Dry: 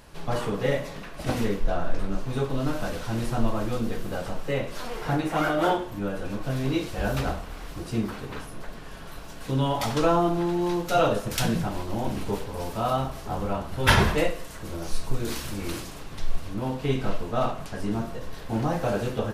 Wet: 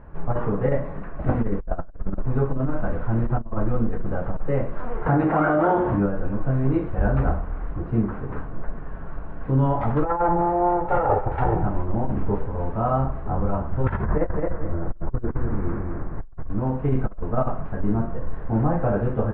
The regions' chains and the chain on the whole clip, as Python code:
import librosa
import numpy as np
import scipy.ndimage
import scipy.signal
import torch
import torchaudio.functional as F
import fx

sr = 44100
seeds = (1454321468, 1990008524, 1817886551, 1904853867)

y = fx.chain(x, sr, fx.highpass(hz=140.0, slope=6),
    fx.env_flatten(amount_pct=70), at=(5.06, 6.06))
y = fx.chain(y, sr, fx.lower_of_two(delay_ms=2.2),
    fx.peak_eq(hz=770.0, db=14.5, octaves=0.57),
    fx.resample_linear(factor=4), at=(10.05, 11.63))
y = fx.chain(y, sr, fx.lowpass(hz=2000.0, slope=24),
    fx.echo_feedback(ms=217, feedback_pct=27, wet_db=-4.0), at=(14.04, 16.49))
y = scipy.signal.sosfilt(scipy.signal.butter(4, 1600.0, 'lowpass', fs=sr, output='sos'), y)
y = fx.low_shelf(y, sr, hz=130.0, db=9.0)
y = fx.over_compress(y, sr, threshold_db=-19.0, ratio=-0.5)